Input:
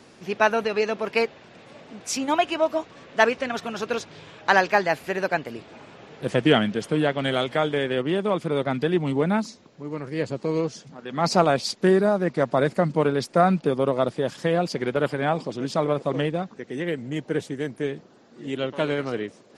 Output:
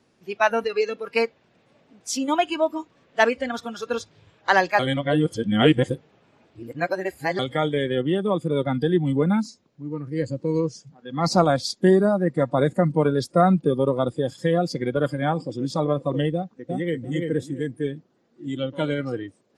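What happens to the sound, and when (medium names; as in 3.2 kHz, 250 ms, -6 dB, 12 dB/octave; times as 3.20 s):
4.79–7.39 s: reverse
16.35–17.00 s: echo throw 340 ms, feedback 30%, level -3 dB
whole clip: spectral noise reduction 15 dB; bass shelf 270 Hz +5 dB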